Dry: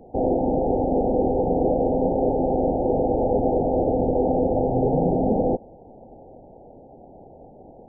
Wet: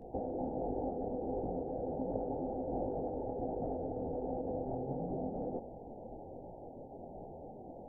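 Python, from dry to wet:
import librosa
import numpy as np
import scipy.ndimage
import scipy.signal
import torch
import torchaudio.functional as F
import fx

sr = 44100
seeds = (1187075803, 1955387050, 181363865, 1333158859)

y = fx.over_compress(x, sr, threshold_db=-28.0, ratio=-1.0)
y = fx.detune_double(y, sr, cents=48)
y = y * 10.0 ** (-6.0 / 20.0)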